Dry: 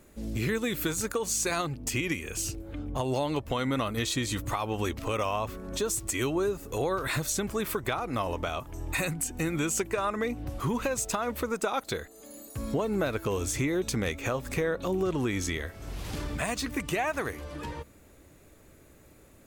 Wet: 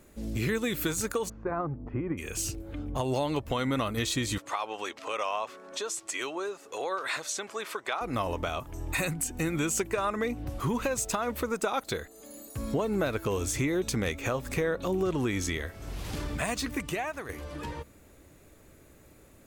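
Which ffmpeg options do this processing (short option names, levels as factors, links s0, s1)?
-filter_complex "[0:a]asplit=3[s0][s1][s2];[s0]afade=t=out:st=1.28:d=0.02[s3];[s1]lowpass=f=1300:w=0.5412,lowpass=f=1300:w=1.3066,afade=t=in:st=1.28:d=0.02,afade=t=out:st=2.17:d=0.02[s4];[s2]afade=t=in:st=2.17:d=0.02[s5];[s3][s4][s5]amix=inputs=3:normalize=0,asettb=1/sr,asplit=3[s6][s7][s8];[s6]atrim=end=4.384[s9];[s7]atrim=start=4.38:end=8.01,asetpts=PTS-STARTPTS,afade=t=in:d=0.004:c=qsin,afade=t=out:st=3.626:d=0.004:c=qsin,highpass=560,lowpass=7100[s10];[s8]atrim=start=8.006[s11];[s9][s10]acrossfade=d=0.004:c1=hsin:c2=qsin[s12];[s12][s11]acrossfade=d=0.004:c1=qsin:c2=hsin,asplit=2[s13][s14];[s13]atrim=end=17.29,asetpts=PTS-STARTPTS,afade=t=out:st=16.69:d=0.6:silence=0.334965[s15];[s14]atrim=start=17.29,asetpts=PTS-STARTPTS,afade=t=in:d=0.004:c=hsin:silence=0.334965[s16];[s15][s16]concat=n=2:v=0:a=1"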